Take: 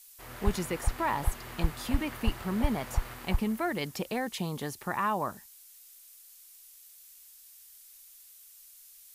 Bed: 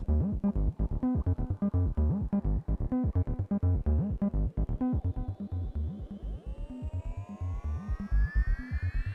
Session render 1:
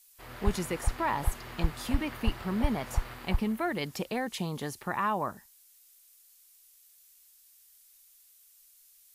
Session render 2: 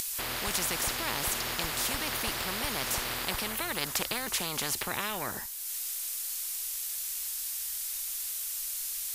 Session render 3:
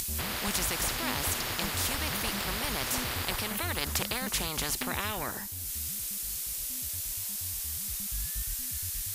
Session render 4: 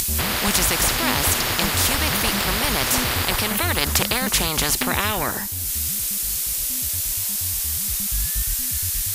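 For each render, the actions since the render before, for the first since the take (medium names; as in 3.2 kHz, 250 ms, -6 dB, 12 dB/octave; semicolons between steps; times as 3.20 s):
noise print and reduce 6 dB
upward compressor, threshold -46 dBFS; spectrum-flattening compressor 4:1
add bed -11.5 dB
trim +11 dB; peak limiter -3 dBFS, peak gain reduction 1.5 dB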